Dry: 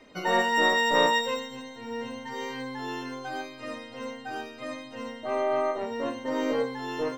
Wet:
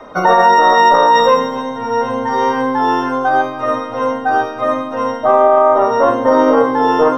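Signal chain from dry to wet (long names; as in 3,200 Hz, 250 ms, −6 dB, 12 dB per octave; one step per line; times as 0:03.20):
convolution reverb RT60 1.2 s, pre-delay 3 ms, DRR 12 dB
boost into a limiter +8 dB
level −1 dB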